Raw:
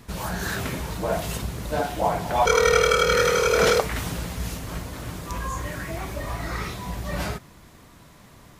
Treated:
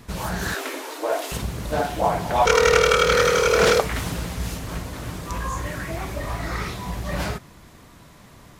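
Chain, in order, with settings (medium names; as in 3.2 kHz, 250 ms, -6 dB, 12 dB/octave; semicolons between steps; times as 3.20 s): 0.54–1.32 s: steep high-pass 270 Hz 96 dB/octave; loudspeaker Doppler distortion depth 0.22 ms; trim +2 dB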